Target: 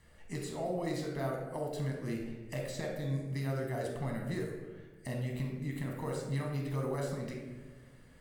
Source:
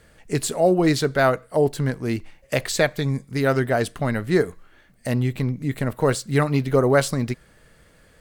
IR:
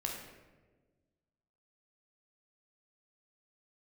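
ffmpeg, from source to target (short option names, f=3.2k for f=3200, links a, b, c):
-filter_complex "[0:a]acrossover=split=890|6200[a][b][c];[a]acompressor=threshold=-28dB:ratio=4[d];[b]acompressor=threshold=-40dB:ratio=4[e];[c]acompressor=threshold=-45dB:ratio=4[f];[d][e][f]amix=inputs=3:normalize=0[g];[1:a]atrim=start_sample=2205[h];[g][h]afir=irnorm=-1:irlink=0,volume=-9dB"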